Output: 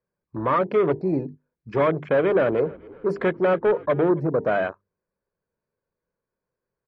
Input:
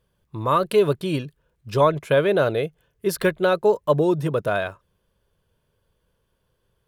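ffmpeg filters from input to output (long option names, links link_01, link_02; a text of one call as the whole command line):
ffmpeg -i in.wav -filter_complex "[0:a]asoftclip=type=tanh:threshold=-21dB,asuperstop=centerf=3200:order=8:qfactor=2,acrossover=split=190 4400:gain=0.158 1 0.141[link_01][link_02][link_03];[link_01][link_02][link_03]amix=inputs=3:normalize=0,bandreject=frequency=50:width_type=h:width=6,bandreject=frequency=100:width_type=h:width=6,bandreject=frequency=150:width_type=h:width=6,bandreject=frequency=200:width_type=h:width=6,bandreject=frequency=250:width_type=h:width=6,bandreject=frequency=300:width_type=h:width=6,bandreject=frequency=350:width_type=h:width=6,bandreject=frequency=400:width_type=h:width=6,bandreject=frequency=450:width_type=h:width=6,acontrast=60,afwtdn=0.0282,lowshelf=frequency=340:gain=6.5,asplit=3[link_04][link_05][link_06];[link_04]afade=type=out:start_time=2.18:duration=0.02[link_07];[link_05]asplit=5[link_08][link_09][link_10][link_11][link_12];[link_09]adelay=276,afreqshift=-42,volume=-23dB[link_13];[link_10]adelay=552,afreqshift=-84,volume=-28.2dB[link_14];[link_11]adelay=828,afreqshift=-126,volume=-33.4dB[link_15];[link_12]adelay=1104,afreqshift=-168,volume=-38.6dB[link_16];[link_08][link_13][link_14][link_15][link_16]amix=inputs=5:normalize=0,afade=type=in:start_time=2.18:duration=0.02,afade=type=out:start_time=4.19:duration=0.02[link_17];[link_06]afade=type=in:start_time=4.19:duration=0.02[link_18];[link_07][link_17][link_18]amix=inputs=3:normalize=0,volume=-2dB" -ar 44100 -c:a libmp3lame -b:a 40k out.mp3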